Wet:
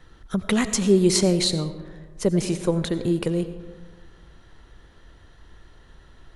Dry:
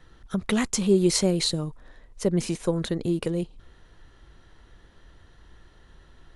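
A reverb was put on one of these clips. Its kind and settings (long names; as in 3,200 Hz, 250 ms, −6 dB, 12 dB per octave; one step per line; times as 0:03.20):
comb and all-pass reverb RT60 1.6 s, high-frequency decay 0.4×, pre-delay 50 ms, DRR 11.5 dB
level +2.5 dB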